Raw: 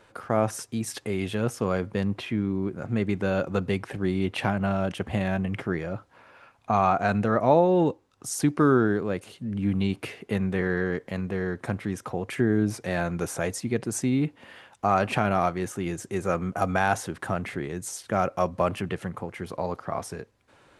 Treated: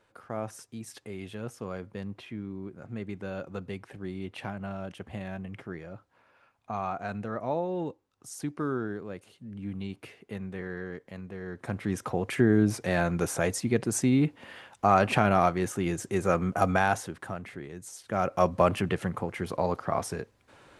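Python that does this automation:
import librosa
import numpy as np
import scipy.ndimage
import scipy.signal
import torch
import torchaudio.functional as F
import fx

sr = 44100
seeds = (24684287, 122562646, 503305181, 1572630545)

y = fx.gain(x, sr, db=fx.line((11.4, -11.0), (11.94, 1.0), (16.69, 1.0), (17.39, -9.0), (17.92, -9.0), (18.45, 2.0)))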